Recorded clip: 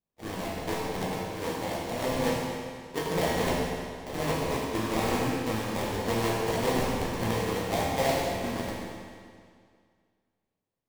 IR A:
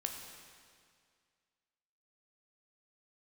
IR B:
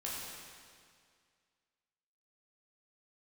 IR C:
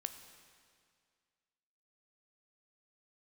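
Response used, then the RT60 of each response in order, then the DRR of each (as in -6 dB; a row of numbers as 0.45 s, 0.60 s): B; 2.1 s, 2.1 s, 2.1 s; 2.5 dB, -6.5 dB, 8.0 dB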